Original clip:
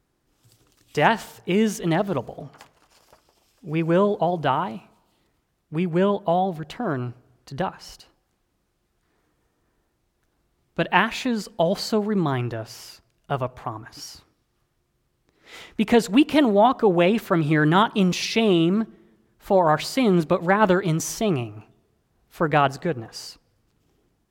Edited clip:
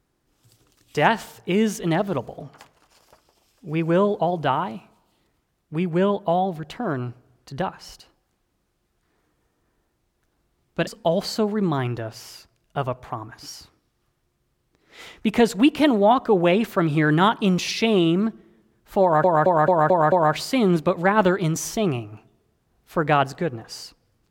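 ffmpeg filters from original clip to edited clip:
-filter_complex "[0:a]asplit=7[s0][s1][s2][s3][s4][s5][s6];[s0]atrim=end=10.872[s7];[s1]atrim=start=11.408:end=19.782[s8];[s2]atrim=start=19.558:end=19.782[s9];[s3]atrim=start=19.558:end=19.782[s10];[s4]atrim=start=19.558:end=19.782[s11];[s5]atrim=start=19.558:end=19.782[s12];[s6]atrim=start=19.558[s13];[s7][s8]acrossfade=d=0.004:c1=hsin:c2=hsin[s14];[s14][s9]acrossfade=d=0.004:c1=hsin:c2=hsin[s15];[s15][s10]acrossfade=d=0.004:c1=hsin:c2=hsin[s16];[s16][s11]acrossfade=d=0.004:c1=hsin:c2=hsin[s17];[s17][s12]acrossfade=d=0.004:c1=hsin:c2=hsin[s18];[s18][s13]acrossfade=d=0.004:c1=hsin:c2=hsin"

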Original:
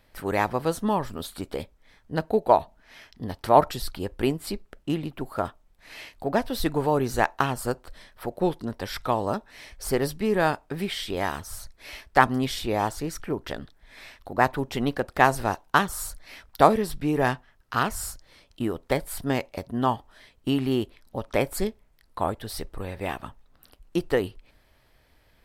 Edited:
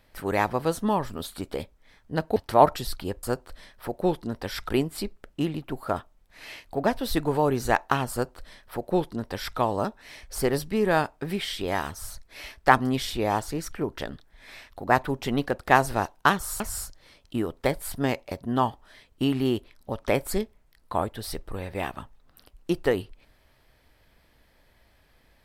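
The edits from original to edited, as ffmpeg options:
-filter_complex "[0:a]asplit=5[s0][s1][s2][s3][s4];[s0]atrim=end=2.362[s5];[s1]atrim=start=3.308:end=4.182[s6];[s2]atrim=start=7.608:end=9.072[s7];[s3]atrim=start=4.178:end=16.092[s8];[s4]atrim=start=17.858[s9];[s5][s6]acrossfade=d=0.004:c1=hsin:c2=hsin[s10];[s10][s7]acrossfade=d=0.004:c1=hsin:c2=hsin[s11];[s11][s8]acrossfade=d=0.004:c1=hsin:c2=hsin[s12];[s12][s9]acrossfade=d=0.004:c1=hsin:c2=hsin"

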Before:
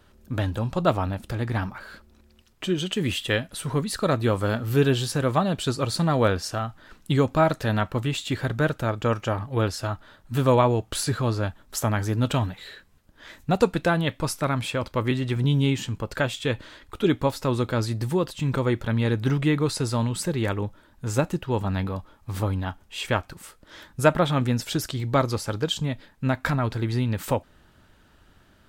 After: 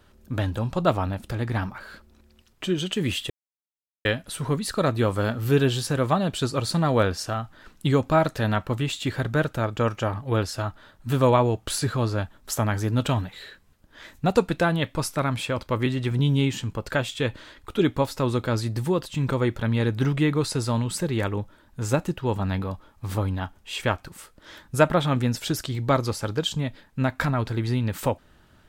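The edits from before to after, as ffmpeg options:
-filter_complex "[0:a]asplit=2[s0][s1];[s0]atrim=end=3.3,asetpts=PTS-STARTPTS,afade=t=out:st=3.296:d=0.004:c=hsin,apad=pad_dur=0.75[s2];[s1]atrim=start=3.3,asetpts=PTS-STARTPTS,afade=t=in:d=0.004:c=hsin[s3];[s2][s3]concat=n=2:v=0:a=1"

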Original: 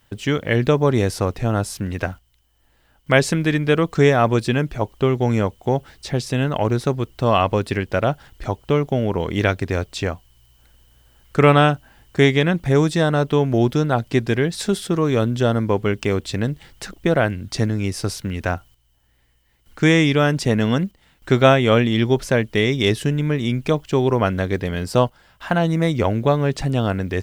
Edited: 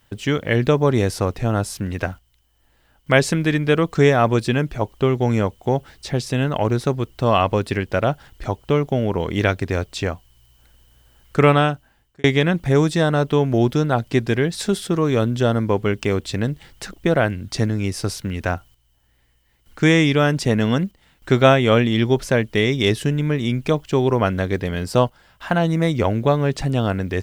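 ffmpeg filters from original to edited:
-filter_complex "[0:a]asplit=2[s0][s1];[s0]atrim=end=12.24,asetpts=PTS-STARTPTS,afade=t=out:st=11.39:d=0.85[s2];[s1]atrim=start=12.24,asetpts=PTS-STARTPTS,afade=t=in:d=0.004:c=hsin[s3];[s2][s3]concat=n=2:v=0:a=1"

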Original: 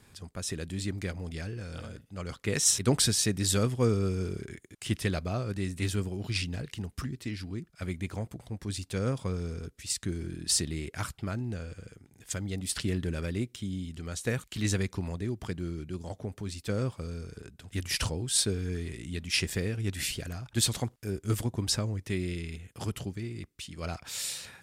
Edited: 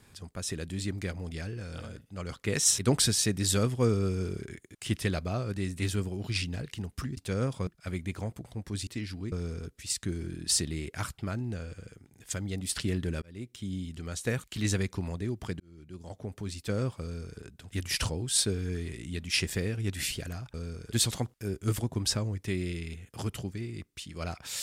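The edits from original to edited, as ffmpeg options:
-filter_complex "[0:a]asplit=9[s0][s1][s2][s3][s4][s5][s6][s7][s8];[s0]atrim=end=7.172[s9];[s1]atrim=start=8.818:end=9.322[s10];[s2]atrim=start=7.618:end=8.822[s11];[s3]atrim=start=7.168:end=7.622[s12];[s4]atrim=start=9.318:end=13.22,asetpts=PTS-STARTPTS,afade=t=out:st=3.898:d=0.004:c=hsin[s13];[s5]atrim=start=13.22:end=15.6,asetpts=PTS-STARTPTS,afade=t=in:d=0.51,afade=t=out:st=2.376:d=0.004:c=hsin[s14];[s6]atrim=start=15.6:end=20.542,asetpts=PTS-STARTPTS,afade=t=in:d=0.8[s15];[s7]atrim=start=17.018:end=17.402[s16];[s8]atrim=start=20.538[s17];[s9][s10]acrossfade=d=0.004:c1=hsin:c2=hsin[s18];[s18][s11]acrossfade=d=0.004:c1=hsin:c2=hsin[s19];[s19][s12]acrossfade=d=0.004:c1=hsin:c2=hsin[s20];[s13][s14][s15]concat=n=3:v=0:a=1[s21];[s20][s21]acrossfade=d=0.004:c1=hsin:c2=hsin[s22];[s22][s16]acrossfade=d=0.004:c1=hsin:c2=hsin[s23];[s23][s17]acrossfade=d=0.004:c1=hsin:c2=hsin"

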